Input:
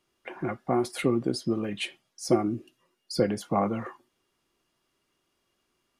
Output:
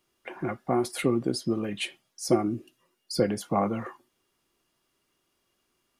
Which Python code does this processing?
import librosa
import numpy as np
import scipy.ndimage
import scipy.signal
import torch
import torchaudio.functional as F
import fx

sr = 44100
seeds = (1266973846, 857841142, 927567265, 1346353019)

y = fx.high_shelf(x, sr, hz=10000.0, db=7.5)